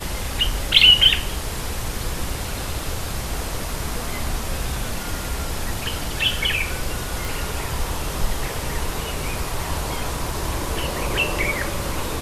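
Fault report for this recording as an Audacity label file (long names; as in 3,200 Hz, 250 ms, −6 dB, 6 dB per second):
7.250000	7.250000	click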